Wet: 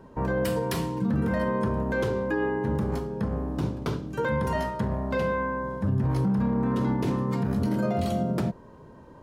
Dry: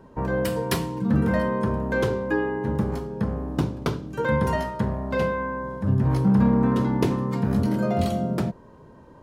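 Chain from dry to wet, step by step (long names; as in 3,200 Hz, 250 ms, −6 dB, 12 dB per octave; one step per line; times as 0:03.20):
brickwall limiter −18 dBFS, peak gain reduction 10 dB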